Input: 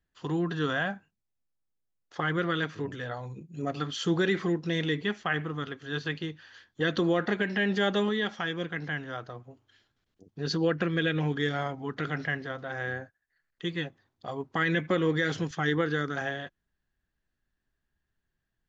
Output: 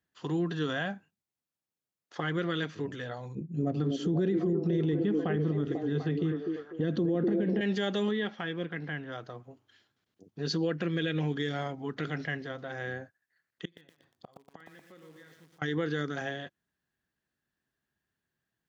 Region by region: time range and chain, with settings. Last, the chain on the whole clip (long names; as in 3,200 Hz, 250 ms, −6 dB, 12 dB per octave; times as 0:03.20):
0:03.35–0:07.61: tilt shelving filter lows +10 dB, about 790 Hz + echo through a band-pass that steps 247 ms, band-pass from 350 Hz, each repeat 0.7 octaves, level −2 dB
0:08.11–0:09.12: one scale factor per block 7 bits + low-pass filter 2,900 Hz
0:13.65–0:15.62: flutter between parallel walls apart 11.8 metres, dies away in 0.34 s + gate with flip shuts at −33 dBFS, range −28 dB + feedback echo at a low word length 119 ms, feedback 55%, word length 10 bits, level −4 dB
whole clip: high-pass filter 120 Hz; dynamic equaliser 1,200 Hz, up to −6 dB, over −43 dBFS, Q 0.84; brickwall limiter −21 dBFS